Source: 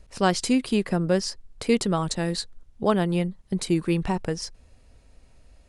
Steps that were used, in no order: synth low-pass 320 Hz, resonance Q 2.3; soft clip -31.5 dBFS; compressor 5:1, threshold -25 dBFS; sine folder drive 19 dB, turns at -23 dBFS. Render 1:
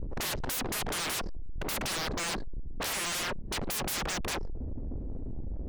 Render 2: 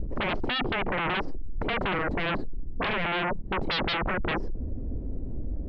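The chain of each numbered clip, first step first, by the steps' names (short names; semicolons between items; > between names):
synth low-pass > sine folder > soft clip > compressor; soft clip > synth low-pass > sine folder > compressor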